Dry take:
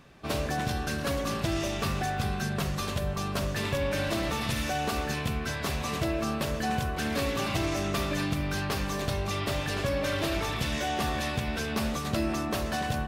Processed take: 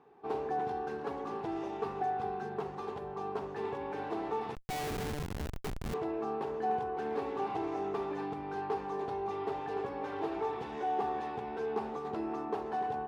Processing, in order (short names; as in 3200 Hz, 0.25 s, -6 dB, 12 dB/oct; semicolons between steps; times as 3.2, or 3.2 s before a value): double band-pass 590 Hz, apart 0.9 oct; 4.55–5.94 Schmitt trigger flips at -38.5 dBFS; gain +5.5 dB